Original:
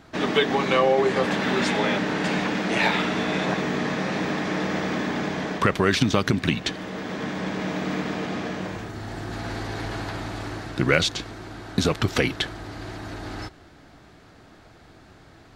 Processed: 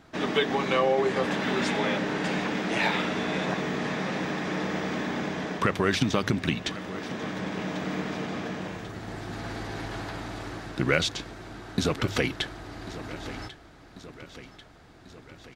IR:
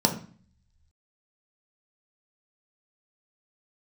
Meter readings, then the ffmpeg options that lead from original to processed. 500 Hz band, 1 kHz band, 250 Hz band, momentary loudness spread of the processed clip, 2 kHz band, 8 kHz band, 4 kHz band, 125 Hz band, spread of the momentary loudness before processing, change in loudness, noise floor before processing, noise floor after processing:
−4.0 dB, −4.0 dB, −4.0 dB, 16 LU, −4.0 dB, −4.0 dB, −4.0 dB, −4.0 dB, 14 LU, −4.0 dB, −51 dBFS, −52 dBFS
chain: -filter_complex "[0:a]bandreject=frequency=4300:width=29,bandreject=frequency=50.8:width_type=h:width=4,bandreject=frequency=101.6:width_type=h:width=4,asplit=2[link_01][link_02];[link_02]aecho=0:1:1092|2184|3276|4368|5460|6552:0.158|0.0951|0.0571|0.0342|0.0205|0.0123[link_03];[link_01][link_03]amix=inputs=2:normalize=0,volume=-4dB"

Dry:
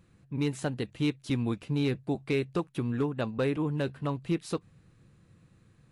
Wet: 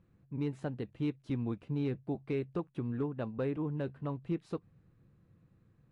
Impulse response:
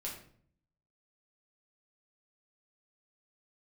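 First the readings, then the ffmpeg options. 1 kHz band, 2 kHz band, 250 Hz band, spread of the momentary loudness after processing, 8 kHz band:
−7.5 dB, −11.5 dB, −5.5 dB, 5 LU, below −20 dB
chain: -af "lowpass=frequency=1100:poles=1,volume=-5dB"

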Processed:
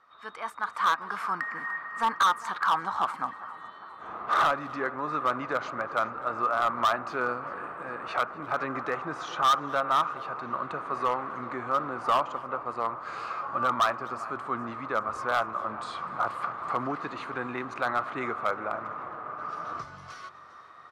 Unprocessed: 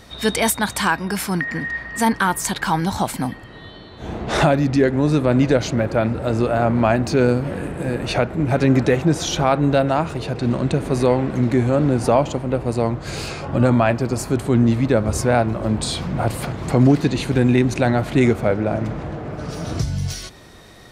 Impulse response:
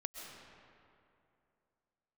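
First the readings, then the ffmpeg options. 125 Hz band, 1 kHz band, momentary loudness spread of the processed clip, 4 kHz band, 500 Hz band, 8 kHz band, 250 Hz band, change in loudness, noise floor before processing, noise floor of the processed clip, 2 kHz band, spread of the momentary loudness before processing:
−28.0 dB, −2.0 dB, 12 LU, −10.0 dB, −15.0 dB, −20.0 dB, −22.0 dB, −10.0 dB, −40 dBFS, −47 dBFS, −6.5 dB, 10 LU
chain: -filter_complex "[0:a]bandpass=frequency=1200:width_type=q:width=8.8:csg=0,asplit=2[link_01][link_02];[link_02]aecho=0:1:402|804|1206|1608|2010:0.106|0.0614|0.0356|0.0207|0.012[link_03];[link_01][link_03]amix=inputs=2:normalize=0,dynaudnorm=framelen=150:gausssize=11:maxgain=10dB,asoftclip=type=hard:threshold=-18dB,asplit=2[link_04][link_05];[link_05]aecho=0:1:248:0.0708[link_06];[link_04][link_06]amix=inputs=2:normalize=0"

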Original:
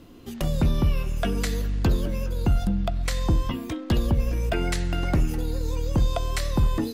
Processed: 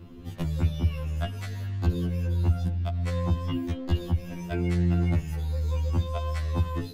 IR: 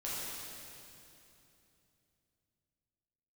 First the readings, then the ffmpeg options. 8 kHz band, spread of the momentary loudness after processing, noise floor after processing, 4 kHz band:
−12.5 dB, 7 LU, −40 dBFS, −7.5 dB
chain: -filter_complex "[0:a]acrossover=split=92|1700[link_01][link_02][link_03];[link_01]acompressor=threshold=-34dB:ratio=4[link_04];[link_02]acompressor=threshold=-32dB:ratio=4[link_05];[link_03]acompressor=threshold=-38dB:ratio=4[link_06];[link_04][link_05][link_06]amix=inputs=3:normalize=0,bass=frequency=250:gain=10,treble=frequency=4000:gain=-7,afftfilt=real='re*2*eq(mod(b,4),0)':imag='im*2*eq(mod(b,4),0)':win_size=2048:overlap=0.75"

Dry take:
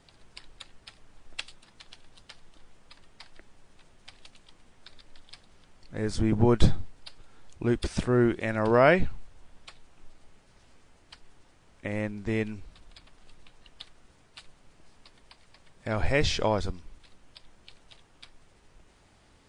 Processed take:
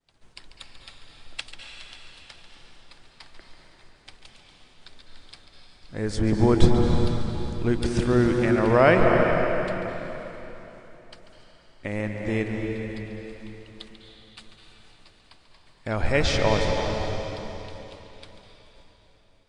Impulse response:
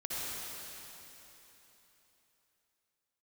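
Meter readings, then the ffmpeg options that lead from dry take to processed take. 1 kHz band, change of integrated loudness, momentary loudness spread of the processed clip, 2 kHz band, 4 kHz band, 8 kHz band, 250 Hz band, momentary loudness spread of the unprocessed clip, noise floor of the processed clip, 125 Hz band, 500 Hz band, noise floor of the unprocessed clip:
+5.0 dB, +3.0 dB, 22 LU, +4.5 dB, +4.0 dB, +3.5 dB, +5.0 dB, 19 LU, −57 dBFS, +5.0 dB, +5.0 dB, −61 dBFS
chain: -filter_complex "[0:a]agate=range=-33dB:threshold=-49dB:ratio=3:detection=peak,asplit=2[link_01][link_02];[1:a]atrim=start_sample=2205,highshelf=frequency=7700:gain=-8,adelay=141[link_03];[link_02][link_03]afir=irnorm=-1:irlink=0,volume=-5dB[link_04];[link_01][link_04]amix=inputs=2:normalize=0,volume=2dB"

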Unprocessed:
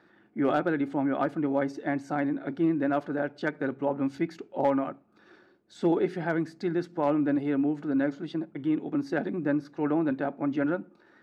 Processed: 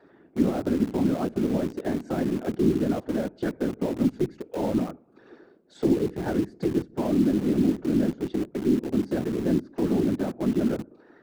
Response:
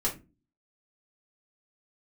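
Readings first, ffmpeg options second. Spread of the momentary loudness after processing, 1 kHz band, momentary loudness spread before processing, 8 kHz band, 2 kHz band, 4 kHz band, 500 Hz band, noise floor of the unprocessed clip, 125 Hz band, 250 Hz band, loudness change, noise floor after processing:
6 LU, −5.0 dB, 5 LU, can't be measured, −6.5 dB, +5.0 dB, +1.5 dB, −61 dBFS, +6.0 dB, +3.5 dB, +2.5 dB, −56 dBFS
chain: -filter_complex "[0:a]highpass=frequency=110:poles=1,equalizer=frequency=380:width_type=o:width=2.4:gain=12,afftfilt=real='hypot(re,im)*cos(2*PI*random(0))':imag='hypot(re,im)*sin(2*PI*random(1))':win_size=512:overlap=0.75,acrossover=split=250[link_01][link_02];[link_02]acompressor=threshold=-34dB:ratio=20[link_03];[link_01][link_03]amix=inputs=2:normalize=0,lowshelf=frequency=190:gain=-2.5,asplit=2[link_04][link_05];[link_05]acrusher=bits=5:mix=0:aa=0.000001,volume=-9.5dB[link_06];[link_04][link_06]amix=inputs=2:normalize=0,volume=3.5dB"

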